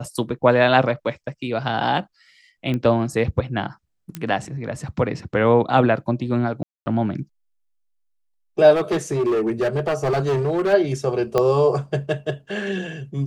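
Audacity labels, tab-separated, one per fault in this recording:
2.740000	2.740000	pop -15 dBFS
4.150000	4.150000	pop -13 dBFS
6.630000	6.860000	gap 0.23 s
8.740000	10.740000	clipped -17 dBFS
11.380000	11.380000	pop -7 dBFS

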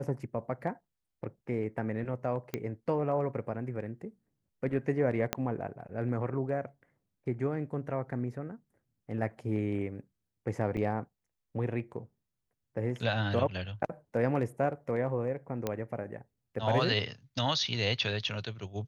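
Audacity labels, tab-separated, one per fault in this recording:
2.540000	2.540000	pop -19 dBFS
5.330000	5.330000	pop -12 dBFS
10.770000	10.780000	gap 5.2 ms
15.670000	15.670000	pop -17 dBFS

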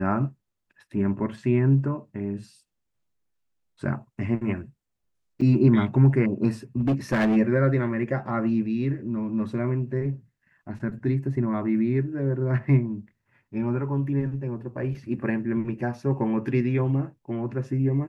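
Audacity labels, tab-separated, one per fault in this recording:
5.410000	5.420000	gap 5.1 ms
6.800000	7.370000	clipped -18 dBFS

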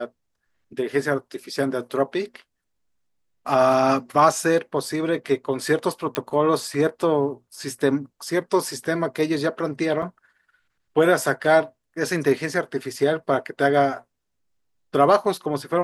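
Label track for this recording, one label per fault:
6.150000	6.150000	pop -8 dBFS
10.020000	10.030000	gap 5.1 ms

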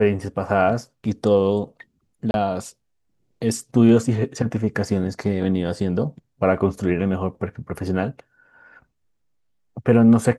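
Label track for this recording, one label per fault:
2.310000	2.340000	gap 31 ms

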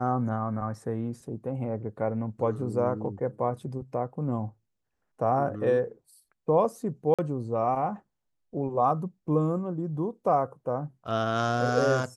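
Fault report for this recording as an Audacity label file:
7.140000	7.190000	gap 46 ms

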